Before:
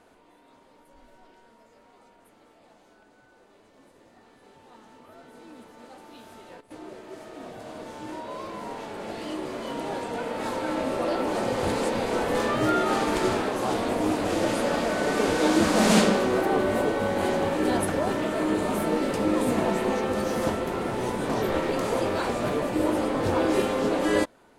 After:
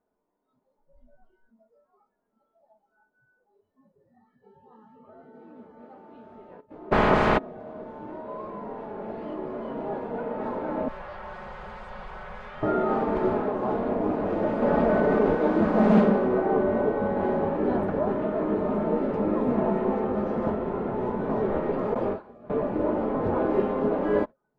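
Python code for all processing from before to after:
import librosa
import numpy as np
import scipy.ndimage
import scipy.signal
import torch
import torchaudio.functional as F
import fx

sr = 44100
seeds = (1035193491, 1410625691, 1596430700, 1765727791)

y = fx.spec_clip(x, sr, under_db=25, at=(6.91, 7.37), fade=0.02)
y = fx.env_flatten(y, sr, amount_pct=100, at=(6.91, 7.37), fade=0.02)
y = fx.chain(y, sr, fx.lower_of_two(delay_ms=5.4),
    fx.tone_stack(knobs='10-0-10'),
    fx.env_flatten(amount_pct=100), at=(10.88, 12.63))
y = fx.chain(y, sr, fx.low_shelf(hz=140.0, db=3.5),
    fx.env_flatten(amount_pct=100), at=(14.62, 15.35))
y = fx.chain(y, sr, fx.gate_hold(open_db=-16.0, close_db=-22.0, hold_ms=71.0, range_db=-21, attack_ms=1.4, release_ms=100.0),
    fx.high_shelf(hz=5900.0, db=5.0), at=(21.94, 22.5))
y = scipy.signal.sosfilt(scipy.signal.butter(2, 1100.0, 'lowpass', fs=sr, output='sos'), y)
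y = fx.noise_reduce_blind(y, sr, reduce_db=21)
y = y + 0.36 * np.pad(y, (int(4.8 * sr / 1000.0), 0))[:len(y)]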